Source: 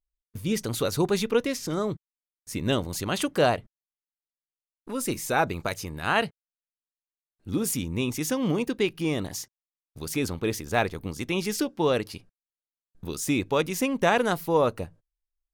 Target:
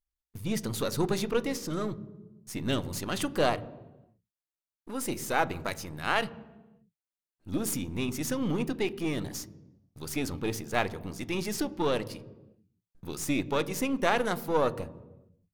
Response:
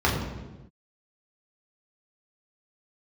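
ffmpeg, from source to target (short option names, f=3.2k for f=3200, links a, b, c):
-filter_complex "[0:a]aeval=exprs='if(lt(val(0),0),0.447*val(0),val(0))':c=same,asplit=2[a][b];[1:a]atrim=start_sample=2205[c];[b][c]afir=irnorm=-1:irlink=0,volume=-30dB[d];[a][d]amix=inputs=2:normalize=0,volume=-1.5dB"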